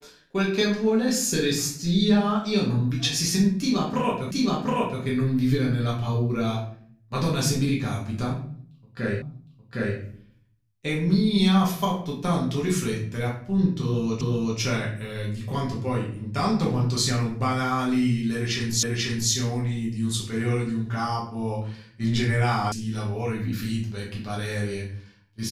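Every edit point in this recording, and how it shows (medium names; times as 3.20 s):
4.31 s: repeat of the last 0.72 s
9.22 s: repeat of the last 0.76 s
14.21 s: repeat of the last 0.38 s
18.83 s: repeat of the last 0.49 s
22.72 s: sound stops dead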